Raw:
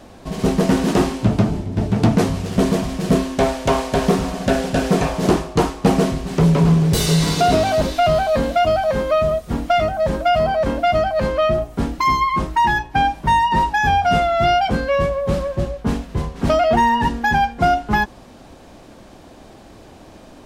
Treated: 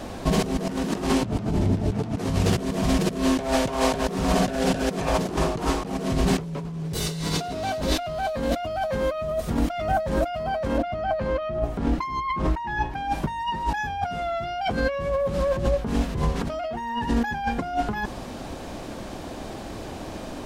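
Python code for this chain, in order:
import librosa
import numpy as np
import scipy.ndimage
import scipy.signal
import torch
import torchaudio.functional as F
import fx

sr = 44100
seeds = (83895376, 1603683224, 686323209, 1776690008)

y = fx.over_compress(x, sr, threshold_db=-26.0, ratio=-1.0)
y = fx.lowpass(y, sr, hz=2700.0, slope=6, at=(10.78, 12.94))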